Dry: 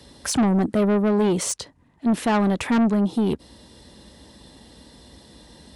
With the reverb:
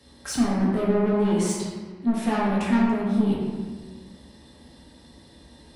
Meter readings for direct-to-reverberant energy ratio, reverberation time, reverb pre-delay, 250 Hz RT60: -6.5 dB, 1.5 s, 4 ms, 1.8 s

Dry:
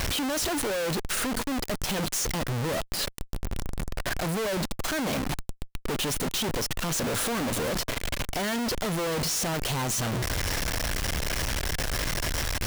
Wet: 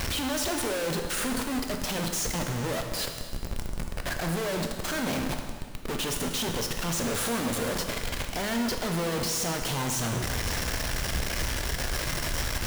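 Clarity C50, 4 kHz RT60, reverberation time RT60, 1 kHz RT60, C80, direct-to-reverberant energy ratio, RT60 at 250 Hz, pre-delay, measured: 5.5 dB, 1.7 s, 1.8 s, 1.8 s, 6.5 dB, 3.5 dB, 1.8 s, 5 ms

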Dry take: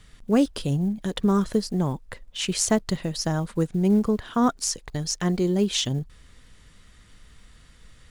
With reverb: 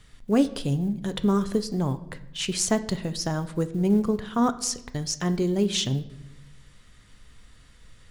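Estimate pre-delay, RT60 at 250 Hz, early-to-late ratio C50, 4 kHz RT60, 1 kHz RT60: 7 ms, 1.2 s, 15.5 dB, 0.65 s, 0.80 s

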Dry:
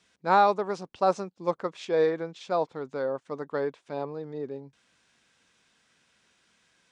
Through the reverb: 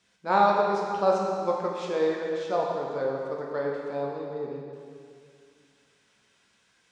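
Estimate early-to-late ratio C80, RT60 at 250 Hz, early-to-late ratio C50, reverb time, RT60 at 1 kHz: 2.0 dB, 2.4 s, 0.5 dB, 2.3 s, 2.3 s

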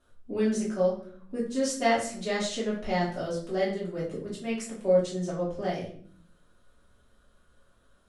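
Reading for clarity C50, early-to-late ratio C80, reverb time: 5.5 dB, 9.5 dB, 0.55 s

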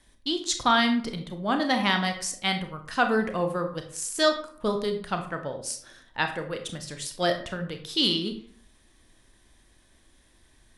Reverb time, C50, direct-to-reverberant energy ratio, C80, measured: 0.55 s, 9.0 dB, 5.5 dB, 12.5 dB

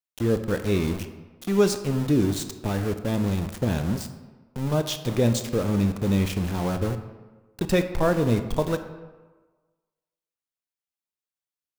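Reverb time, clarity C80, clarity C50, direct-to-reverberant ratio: 1.3 s, 12.0 dB, 10.5 dB, 8.5 dB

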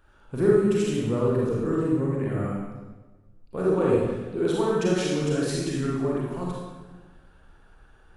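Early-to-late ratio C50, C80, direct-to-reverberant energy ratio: -1.5 dB, 1.5 dB, -5.0 dB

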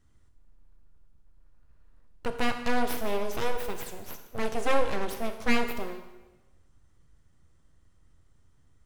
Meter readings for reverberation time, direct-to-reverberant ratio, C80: 1.1 s, 6.0 dB, 10.0 dB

